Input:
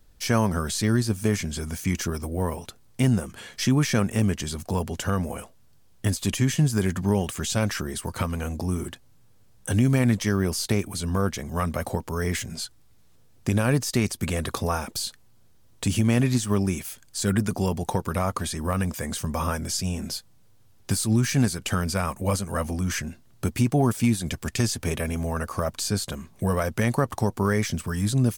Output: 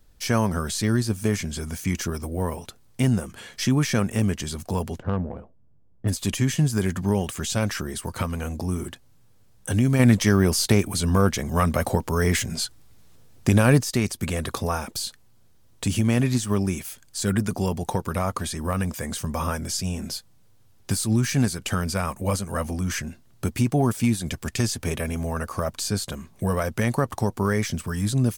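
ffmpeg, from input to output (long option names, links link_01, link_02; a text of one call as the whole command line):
ffmpeg -i in.wav -filter_complex "[0:a]asplit=3[link_01][link_02][link_03];[link_01]afade=type=out:start_time=4.98:duration=0.02[link_04];[link_02]adynamicsmooth=sensitivity=0.5:basefreq=640,afade=type=in:start_time=4.98:duration=0.02,afade=type=out:start_time=6.07:duration=0.02[link_05];[link_03]afade=type=in:start_time=6.07:duration=0.02[link_06];[link_04][link_05][link_06]amix=inputs=3:normalize=0,asettb=1/sr,asplit=3[link_07][link_08][link_09];[link_07]atrim=end=9.994[link_10];[link_08]atrim=start=9.99:end=13.81,asetpts=PTS-STARTPTS,afade=type=in:duration=0.004:curve=qsin,afade=type=out:start_time=3.816:duration=0.004:curve=qsin,acontrast=34[link_11];[link_09]atrim=start=13.806[link_12];[link_10][link_11]acrossfade=duration=0.004:curve1=hsin:curve2=qsin[link_13];[link_13][link_12]acrossfade=duration=0.004:curve1=qsin:curve2=hsin" out.wav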